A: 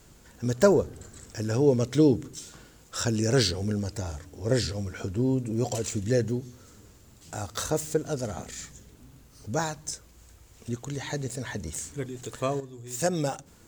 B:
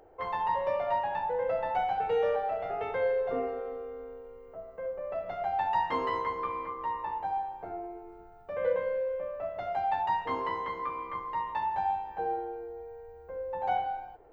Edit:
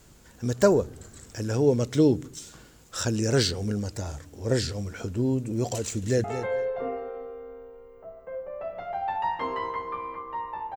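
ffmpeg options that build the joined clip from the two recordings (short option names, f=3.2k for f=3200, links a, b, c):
-filter_complex "[0:a]apad=whole_dur=10.76,atrim=end=10.76,atrim=end=6.242[a];[1:a]atrim=start=2.748:end=7.27[b];[a][b]acrossfade=d=0.004:c1=hsin:c2=hsin,asplit=2[c][d];[d]afade=t=in:st=5.81:d=0.01,afade=t=out:st=6.24:d=0.01,aecho=0:1:220|440:0.316228|0.0474342[e];[c][e]amix=inputs=2:normalize=0"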